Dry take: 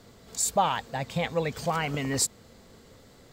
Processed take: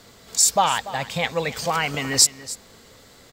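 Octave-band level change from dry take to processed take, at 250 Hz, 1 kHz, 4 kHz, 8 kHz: +1.0, +5.5, +12.0, +10.5 dB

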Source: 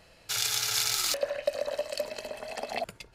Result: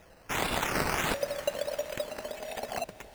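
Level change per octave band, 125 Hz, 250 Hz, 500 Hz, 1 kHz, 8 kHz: +9.5, +11.5, -0.5, +5.0, -9.0 dB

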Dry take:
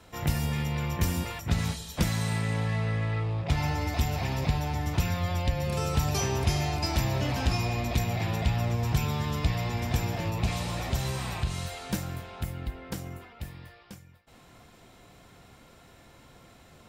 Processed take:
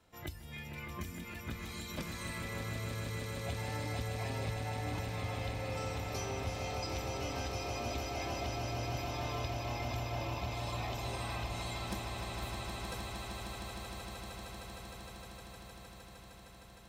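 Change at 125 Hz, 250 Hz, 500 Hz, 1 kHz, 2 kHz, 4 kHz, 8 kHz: -12.0, -11.0, -5.0, -6.0, -6.5, -6.5, -8.0 dB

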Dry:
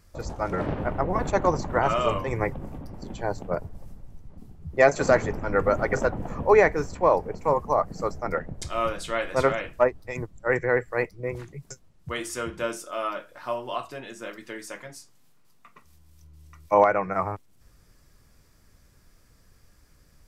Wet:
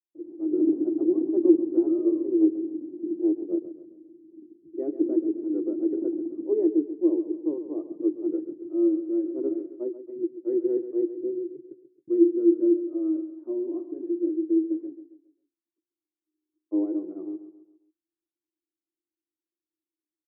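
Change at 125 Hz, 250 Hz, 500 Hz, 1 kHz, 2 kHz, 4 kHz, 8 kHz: under -25 dB, +11.0 dB, -3.0 dB, under -30 dB, under -40 dB, under -40 dB, under -35 dB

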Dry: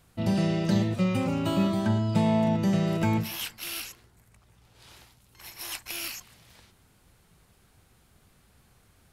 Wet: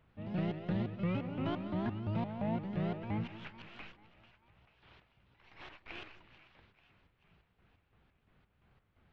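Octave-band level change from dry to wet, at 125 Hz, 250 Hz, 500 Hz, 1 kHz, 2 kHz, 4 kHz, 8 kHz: -10.5 dB, -11.5 dB, -11.0 dB, -10.5 dB, -10.5 dB, -16.5 dB, under -35 dB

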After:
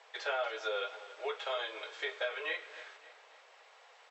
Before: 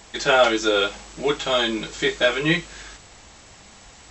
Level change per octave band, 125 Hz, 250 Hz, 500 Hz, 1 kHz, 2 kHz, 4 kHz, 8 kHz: under -40 dB, -34.0 dB, -16.5 dB, -15.0 dB, -14.5 dB, -17.5 dB, -25.0 dB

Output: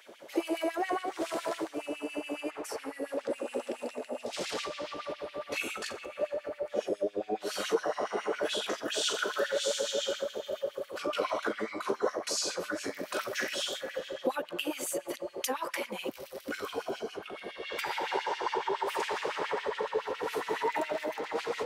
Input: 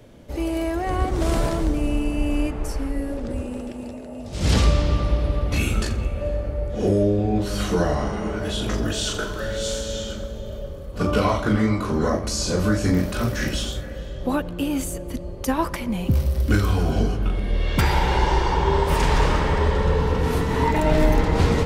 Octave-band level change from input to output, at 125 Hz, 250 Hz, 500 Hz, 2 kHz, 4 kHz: -36.0, -15.5, -7.0, -6.5, -5.0 dB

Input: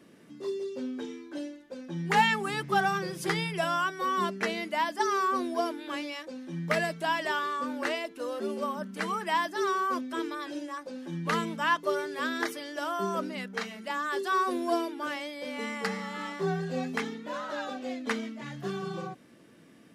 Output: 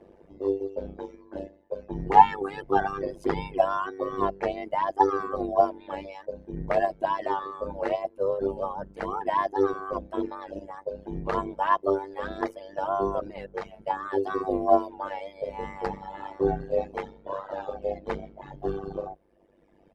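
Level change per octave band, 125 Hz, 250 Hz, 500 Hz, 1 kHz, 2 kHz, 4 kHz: -1.5, 0.0, +6.0, +4.0, -7.5, -11.5 dB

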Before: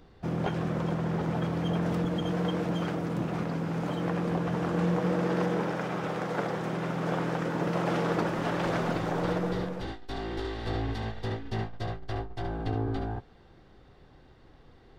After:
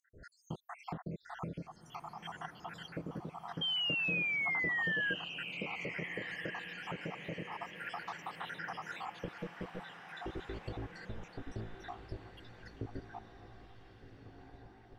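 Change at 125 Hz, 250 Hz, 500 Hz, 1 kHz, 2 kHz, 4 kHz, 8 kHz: -16.0 dB, -16.5 dB, -16.0 dB, -11.0 dB, +2.0 dB, +3.0 dB, under -10 dB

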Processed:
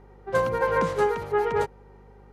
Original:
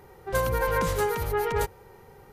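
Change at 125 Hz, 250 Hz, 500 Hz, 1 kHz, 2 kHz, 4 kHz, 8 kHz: -4.5 dB, +2.0 dB, +3.0 dB, +2.5 dB, +1.0 dB, -4.0 dB, n/a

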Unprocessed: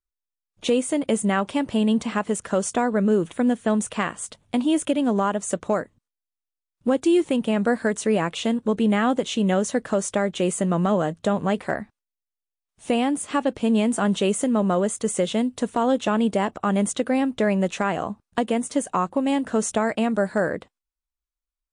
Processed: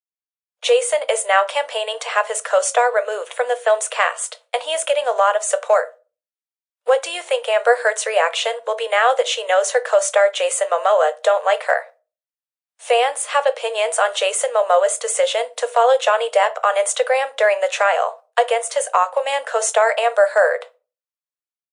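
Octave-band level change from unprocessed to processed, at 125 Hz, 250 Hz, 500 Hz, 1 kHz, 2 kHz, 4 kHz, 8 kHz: under -40 dB, under -30 dB, +7.5 dB, +8.5 dB, +10.0 dB, +9.0 dB, +7.5 dB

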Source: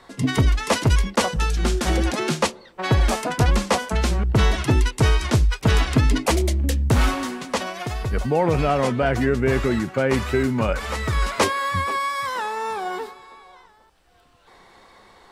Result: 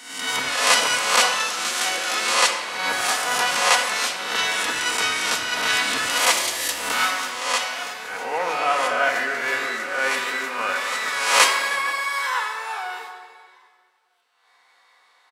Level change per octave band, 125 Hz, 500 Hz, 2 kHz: -31.0, -5.5, +7.0 dB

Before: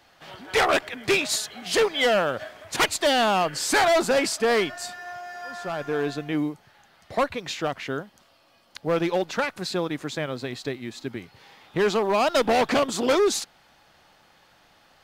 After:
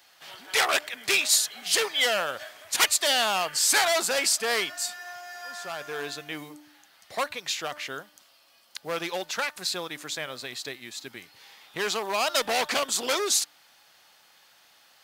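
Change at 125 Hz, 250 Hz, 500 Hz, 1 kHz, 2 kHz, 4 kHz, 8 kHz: -14.0, -13.0, -8.0, -4.5, -0.5, +2.5, +6.0 dB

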